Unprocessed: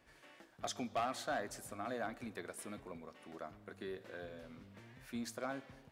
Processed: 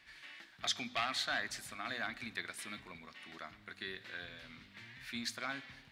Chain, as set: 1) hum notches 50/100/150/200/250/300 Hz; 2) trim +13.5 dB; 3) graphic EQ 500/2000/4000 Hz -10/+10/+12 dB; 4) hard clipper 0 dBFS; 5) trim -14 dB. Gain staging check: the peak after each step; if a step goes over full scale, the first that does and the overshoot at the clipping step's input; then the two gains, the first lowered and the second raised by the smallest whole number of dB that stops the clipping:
-29.0 dBFS, -15.5 dBFS, -6.0 dBFS, -6.0 dBFS, -20.0 dBFS; nothing clips

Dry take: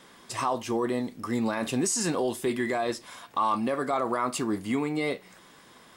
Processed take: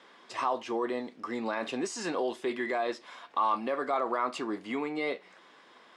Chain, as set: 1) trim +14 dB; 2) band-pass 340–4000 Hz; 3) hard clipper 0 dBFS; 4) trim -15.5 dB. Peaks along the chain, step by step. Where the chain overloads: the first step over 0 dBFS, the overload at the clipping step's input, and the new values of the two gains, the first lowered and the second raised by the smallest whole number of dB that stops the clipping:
-2.5 dBFS, -2.0 dBFS, -2.0 dBFS, -17.5 dBFS; nothing clips

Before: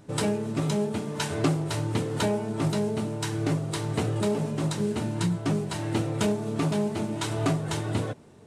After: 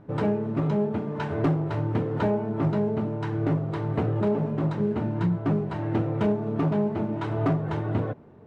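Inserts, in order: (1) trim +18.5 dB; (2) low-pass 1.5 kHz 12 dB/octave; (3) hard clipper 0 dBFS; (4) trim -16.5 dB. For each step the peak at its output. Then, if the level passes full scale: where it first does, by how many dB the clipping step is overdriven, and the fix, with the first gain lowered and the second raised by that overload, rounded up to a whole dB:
+6.5 dBFS, +6.5 dBFS, 0.0 dBFS, -16.5 dBFS; step 1, 6.5 dB; step 1 +11.5 dB, step 4 -9.5 dB

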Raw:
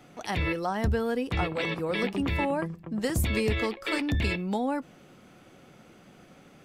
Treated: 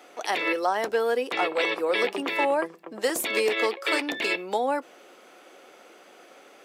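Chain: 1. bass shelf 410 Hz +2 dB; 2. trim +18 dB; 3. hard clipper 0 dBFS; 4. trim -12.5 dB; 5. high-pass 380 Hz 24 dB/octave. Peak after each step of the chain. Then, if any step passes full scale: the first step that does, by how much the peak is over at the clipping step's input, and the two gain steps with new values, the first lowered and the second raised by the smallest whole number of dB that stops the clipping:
-13.0 dBFS, +5.0 dBFS, 0.0 dBFS, -12.5 dBFS, -11.0 dBFS; step 2, 5.0 dB; step 2 +13 dB, step 4 -7.5 dB

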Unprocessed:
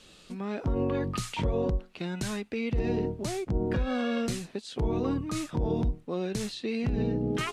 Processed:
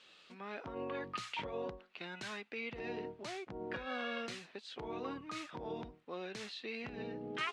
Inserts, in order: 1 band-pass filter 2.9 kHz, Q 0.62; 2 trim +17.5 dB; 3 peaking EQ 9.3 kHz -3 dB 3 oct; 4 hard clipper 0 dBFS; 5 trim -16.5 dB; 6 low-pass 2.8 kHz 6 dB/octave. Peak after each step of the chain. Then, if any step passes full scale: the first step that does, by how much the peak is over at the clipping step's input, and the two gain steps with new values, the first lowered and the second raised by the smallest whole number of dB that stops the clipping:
-21.0 dBFS, -3.5 dBFS, -4.5 dBFS, -4.5 dBFS, -21.0 dBFS, -23.0 dBFS; nothing clips

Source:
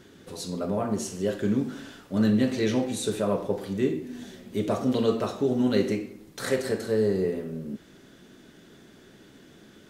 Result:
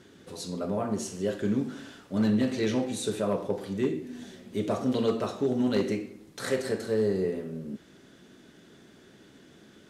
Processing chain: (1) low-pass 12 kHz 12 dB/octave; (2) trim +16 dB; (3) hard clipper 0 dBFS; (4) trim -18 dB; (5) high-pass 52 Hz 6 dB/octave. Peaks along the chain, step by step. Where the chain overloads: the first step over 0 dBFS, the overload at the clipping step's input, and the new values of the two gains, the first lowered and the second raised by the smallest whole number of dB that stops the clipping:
-10.0 dBFS, +6.0 dBFS, 0.0 dBFS, -18.0 dBFS, -16.5 dBFS; step 2, 6.0 dB; step 2 +10 dB, step 4 -12 dB

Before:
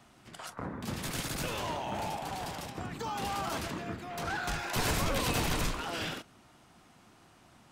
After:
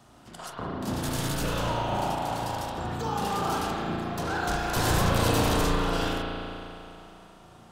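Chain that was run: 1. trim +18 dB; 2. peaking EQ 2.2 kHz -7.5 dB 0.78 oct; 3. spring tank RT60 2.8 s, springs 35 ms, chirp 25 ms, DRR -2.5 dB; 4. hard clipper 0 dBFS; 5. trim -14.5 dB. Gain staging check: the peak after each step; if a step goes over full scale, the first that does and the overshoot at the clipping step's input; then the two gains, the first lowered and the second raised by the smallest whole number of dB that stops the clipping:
-1.5 dBFS, -2.0 dBFS, +3.0 dBFS, 0.0 dBFS, -14.5 dBFS; step 3, 3.0 dB; step 1 +15 dB, step 5 -11.5 dB

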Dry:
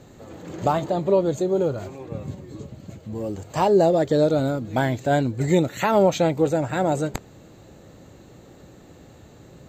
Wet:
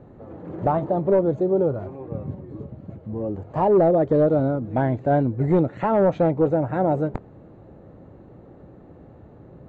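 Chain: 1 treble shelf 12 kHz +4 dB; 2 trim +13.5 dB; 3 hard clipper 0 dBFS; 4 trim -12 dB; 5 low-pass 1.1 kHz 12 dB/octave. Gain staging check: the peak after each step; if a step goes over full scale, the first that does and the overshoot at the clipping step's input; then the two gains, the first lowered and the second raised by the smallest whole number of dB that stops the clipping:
-7.0 dBFS, +6.5 dBFS, 0.0 dBFS, -12.0 dBFS, -11.5 dBFS; step 2, 6.5 dB; step 2 +6.5 dB, step 4 -5 dB

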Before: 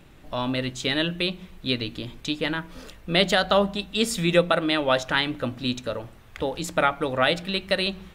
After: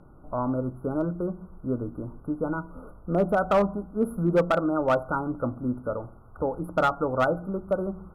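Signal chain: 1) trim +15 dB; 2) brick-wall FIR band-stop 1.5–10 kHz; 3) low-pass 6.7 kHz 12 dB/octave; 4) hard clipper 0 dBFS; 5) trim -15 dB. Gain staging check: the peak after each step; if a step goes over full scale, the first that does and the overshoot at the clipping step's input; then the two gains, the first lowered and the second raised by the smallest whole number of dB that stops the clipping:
+8.5 dBFS, +7.5 dBFS, +7.5 dBFS, 0.0 dBFS, -15.0 dBFS; step 1, 7.5 dB; step 1 +7 dB, step 5 -7 dB

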